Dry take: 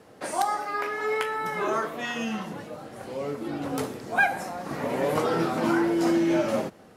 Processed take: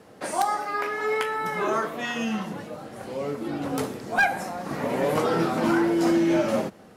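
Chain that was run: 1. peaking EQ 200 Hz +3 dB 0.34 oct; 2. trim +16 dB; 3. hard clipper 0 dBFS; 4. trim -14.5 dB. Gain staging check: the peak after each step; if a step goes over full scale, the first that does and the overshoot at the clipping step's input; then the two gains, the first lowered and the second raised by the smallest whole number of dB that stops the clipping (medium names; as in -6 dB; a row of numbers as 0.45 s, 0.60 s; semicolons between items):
-10.5 dBFS, +5.5 dBFS, 0.0 dBFS, -14.5 dBFS; step 2, 5.5 dB; step 2 +10 dB, step 4 -8.5 dB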